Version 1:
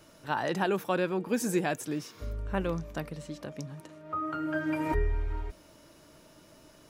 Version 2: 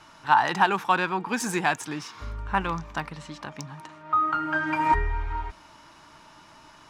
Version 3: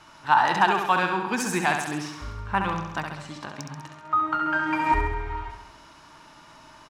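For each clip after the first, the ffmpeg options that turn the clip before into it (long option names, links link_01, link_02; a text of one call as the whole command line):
ffmpeg -i in.wav -af "adynamicsmooth=sensitivity=7.5:basefreq=6300,lowshelf=frequency=700:width_type=q:width=3:gain=-7.5,volume=8.5dB" out.wav
ffmpeg -i in.wav -af "aecho=1:1:67|134|201|268|335|402|469|536:0.501|0.291|0.169|0.0978|0.0567|0.0329|0.0191|0.0111" out.wav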